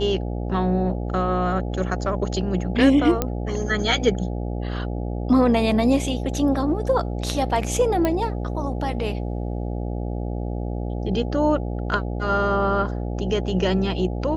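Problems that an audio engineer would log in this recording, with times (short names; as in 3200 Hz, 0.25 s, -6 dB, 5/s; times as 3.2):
buzz 60 Hz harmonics 14 -27 dBFS
3.22 pop -7 dBFS
8.05 pop -9 dBFS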